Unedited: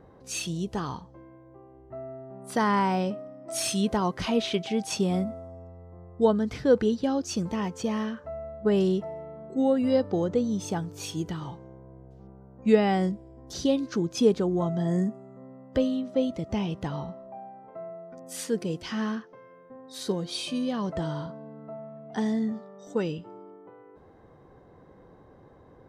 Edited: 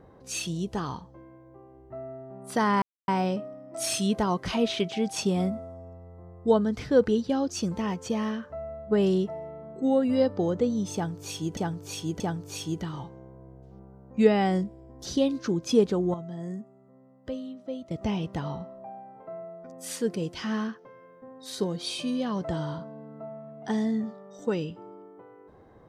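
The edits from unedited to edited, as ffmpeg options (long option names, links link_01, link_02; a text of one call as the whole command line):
ffmpeg -i in.wav -filter_complex "[0:a]asplit=6[link_01][link_02][link_03][link_04][link_05][link_06];[link_01]atrim=end=2.82,asetpts=PTS-STARTPTS,afade=type=out:start_time=2.816:duration=0.004:curve=hsin,apad=pad_dur=0.26[link_07];[link_02]atrim=start=2.82:end=11.312,asetpts=PTS-STARTPTS,afade=type=in:duration=0.004:curve=hsin[link_08];[link_03]atrim=start=10.678:end=11.312[link_09];[link_04]atrim=start=10.678:end=14.622[link_10];[link_05]atrim=start=14.618:end=16.392,asetpts=PTS-STARTPTS,volume=-10dB[link_11];[link_06]atrim=start=16.388[link_12];[link_07][link_08]concat=n=2:v=0:a=1[link_13];[link_13][link_09]acrossfade=duration=0.004:curve1=hsin:curve2=hsin[link_14];[link_14][link_10]acrossfade=duration=0.004:curve1=hsin:curve2=hsin[link_15];[link_15][link_11]acrossfade=duration=0.004:curve1=hsin:curve2=hsin[link_16];[link_16][link_12]acrossfade=duration=0.004:curve1=hsin:curve2=hsin" out.wav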